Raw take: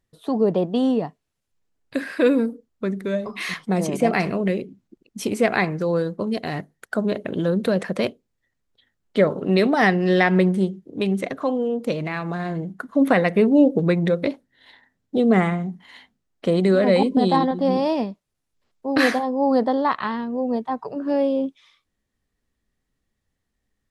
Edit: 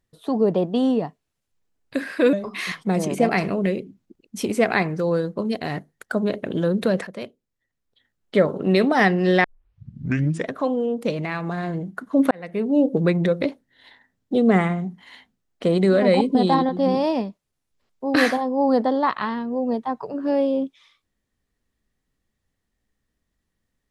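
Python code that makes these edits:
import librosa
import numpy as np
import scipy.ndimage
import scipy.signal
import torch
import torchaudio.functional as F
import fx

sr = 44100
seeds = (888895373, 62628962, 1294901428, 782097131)

y = fx.edit(x, sr, fx.cut(start_s=2.33, length_s=0.82),
    fx.fade_in_from(start_s=7.89, length_s=1.34, floor_db=-13.0),
    fx.tape_start(start_s=10.26, length_s=1.09),
    fx.fade_in_span(start_s=13.13, length_s=0.7), tone=tone)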